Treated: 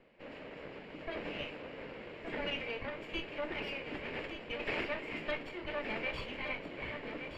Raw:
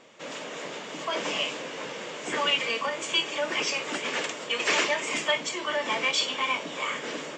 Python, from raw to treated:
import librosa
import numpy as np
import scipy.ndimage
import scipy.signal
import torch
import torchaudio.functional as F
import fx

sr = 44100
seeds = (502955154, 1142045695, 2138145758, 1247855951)

y = fx.lower_of_two(x, sr, delay_ms=0.4)
y = fx.air_absorb(y, sr, metres=450.0)
y = y + 10.0 ** (-8.5 / 20.0) * np.pad(y, (int(1170 * sr / 1000.0), 0))[:len(y)]
y = y * 10.0 ** (-6.0 / 20.0)